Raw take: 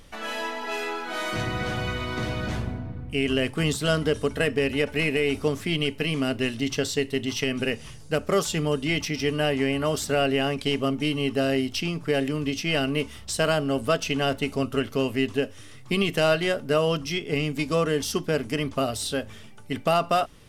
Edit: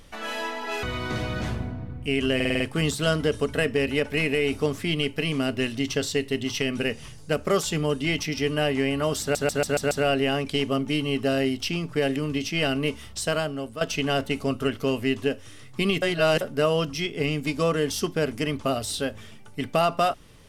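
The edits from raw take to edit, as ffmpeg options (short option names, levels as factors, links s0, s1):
-filter_complex "[0:a]asplit=15[s0][s1][s2][s3][s4][s5][s6][s7][s8][s9][s10][s11][s12][s13][s14];[s0]atrim=end=0.832[s15];[s1]atrim=start=1.898:end=3.472[s16];[s2]atrim=start=3.418:end=3.472[s17];[s3]atrim=start=3.418:end=3.472[s18];[s4]atrim=start=3.418:end=3.472[s19];[s5]atrim=start=3.418:end=3.472[s20];[s6]atrim=start=3.418:end=10.172[s21];[s7]atrim=start=10.028:end=10.172[s22];[s8]atrim=start=10.028:end=10.172[s23];[s9]atrim=start=10.028:end=10.172[s24];[s10]atrim=start=10.028:end=10.172[s25];[s11]atrim=start=10.028:end=13.93,asetpts=PTS-STARTPTS,afade=t=out:st=3.212:d=0.69:silence=0.223872[s26];[s12]atrim=start=13.93:end=16.142,asetpts=PTS-STARTPTS,afade=t=in:d=0.004:c=hsin:silence=0.223872[s27];[s13]atrim=start=16.138:end=16.532,asetpts=PTS-STARTPTS,areverse[s28];[s14]atrim=start=16.528[s29];[s15][s16]acrossfade=d=0.004:c1=hsin:c2=hsin[s30];[s30][s17]acrossfade=d=0.004:c1=hsin:c2=hsin[s31];[s31][s18]acrossfade=d=0.004:c1=hsin:c2=hsin[s32];[s32][s19]acrossfade=d=0.004:c1=hsin:c2=hsin[s33];[s33][s20]acrossfade=d=0.004:c1=hsin:c2=hsin[s34];[s34][s21]acrossfade=d=0.004:c1=hsin:c2=hsin[s35];[s35][s22]acrossfade=d=0.004:c1=hsin:c2=hsin[s36];[s36][s23]acrossfade=d=0.004:c1=hsin:c2=hsin[s37];[s37][s24]acrossfade=d=0.004:c1=hsin:c2=hsin[s38];[s38][s25]acrossfade=d=0.004:c1=hsin:c2=hsin[s39];[s26][s27]concat=n=2:v=0:a=1[s40];[s39][s40]acrossfade=d=0.004:c1=hsin:c2=hsin[s41];[s41][s28]acrossfade=d=0.004:c1=hsin:c2=hsin[s42];[s42][s29]acrossfade=d=0.004:c1=hsin:c2=hsin"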